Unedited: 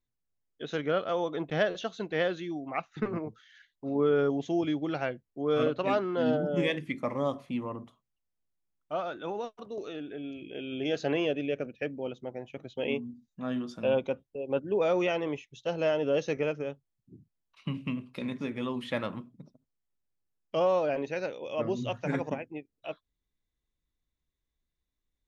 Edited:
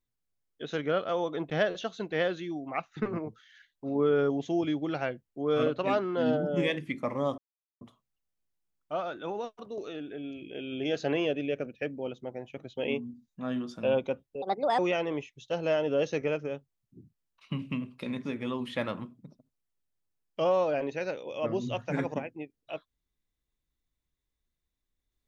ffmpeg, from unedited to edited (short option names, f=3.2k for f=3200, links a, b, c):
-filter_complex "[0:a]asplit=5[a][b][c][d][e];[a]atrim=end=7.38,asetpts=PTS-STARTPTS,afade=t=out:st=7.376:d=0.004:c=hsin[f];[b]atrim=start=7.38:end=7.81,asetpts=PTS-STARTPTS,volume=0[g];[c]atrim=start=7.81:end=14.424,asetpts=PTS-STARTPTS,afade=t=in:d=0.004:c=hsin[h];[d]atrim=start=14.42:end=14.94,asetpts=PTS-STARTPTS,asetrate=62622,aresample=44100,atrim=end_sample=16149,asetpts=PTS-STARTPTS[i];[e]atrim=start=14.936[j];[f][g][h]concat=n=3:v=0:a=1[k];[k][i]acrossfade=d=0.004:c1=hsin:c2=hsin[l];[l][j]acrossfade=d=0.004:c1=hsin:c2=hsin"